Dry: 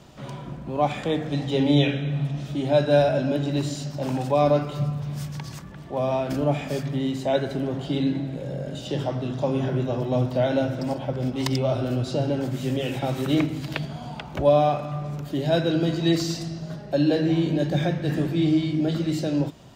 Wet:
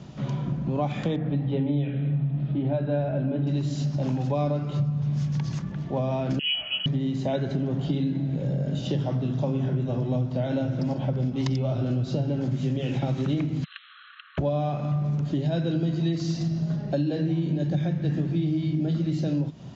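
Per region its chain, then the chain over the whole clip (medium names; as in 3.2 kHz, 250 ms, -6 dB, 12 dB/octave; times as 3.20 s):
1.16–3.47 s: distance through air 420 m + hum notches 50/100/150/200/250/300/350/400/450 Hz
6.39–6.86 s: peaking EQ 120 Hz +10 dB 0.64 oct + feedback comb 71 Hz, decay 0.19 s, mix 90% + frequency inversion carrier 3.1 kHz
13.64–14.38 s: comb filter that takes the minimum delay 0.67 ms + brick-wall FIR band-pass 1.1–4.2 kHz + compression 1.5:1, threshold -48 dBFS
whole clip: elliptic low-pass 6.8 kHz, stop band 40 dB; peaking EQ 160 Hz +11.5 dB 1.7 oct; compression 6:1, threshold -23 dBFS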